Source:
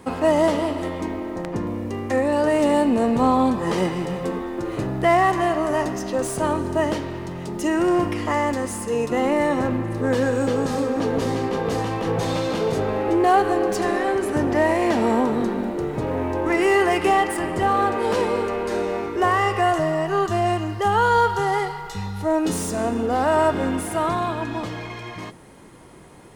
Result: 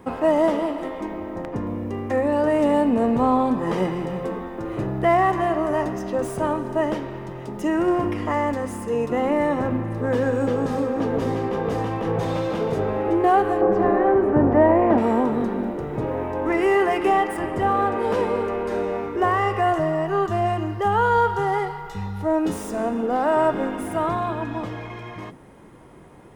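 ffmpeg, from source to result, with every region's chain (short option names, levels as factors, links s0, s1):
-filter_complex "[0:a]asettb=1/sr,asplit=3[s0][s1][s2];[s0]atrim=end=13.614[s3];[s1]atrim=start=13.61:end=14.98,asetpts=PTS-STARTPTS,afade=t=in:d=0.004:c=qsin,afade=t=out:st=1.366:d=0.004:c=qsin,lowpass=1200,aemphasis=mode=production:type=50fm,acontrast=38[s4];[s2]atrim=start=14.976[s5];[s3][s4]acrossfade=d=0.004:c1=hsin:c2=qsin[s6];[s6][s5]acrossfade=d=0.004:c1=qsin:c2=hsin,equalizer=f=7600:w=0.36:g=-10,bandreject=f=4300:w=15,bandreject=f=87.77:t=h:w=4,bandreject=f=175.54:t=h:w=4,bandreject=f=263.31:t=h:w=4,bandreject=f=351.08:t=h:w=4,bandreject=f=438.85:t=h:w=4"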